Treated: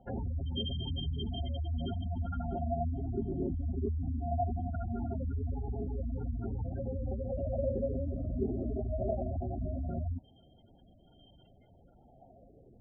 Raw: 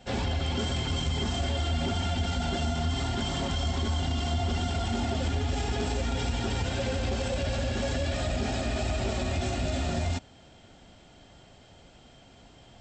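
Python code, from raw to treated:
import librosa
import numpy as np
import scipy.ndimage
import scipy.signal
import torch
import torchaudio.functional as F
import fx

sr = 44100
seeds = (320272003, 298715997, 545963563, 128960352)

y = fx.tilt_shelf(x, sr, db=3.0, hz=670.0)
y = fx.spec_gate(y, sr, threshold_db=-15, keep='strong')
y = fx.filter_lfo_lowpass(y, sr, shape='sine', hz=0.21, low_hz=370.0, high_hz=4500.0, q=4.9)
y = y * librosa.db_to_amplitude(-8.0)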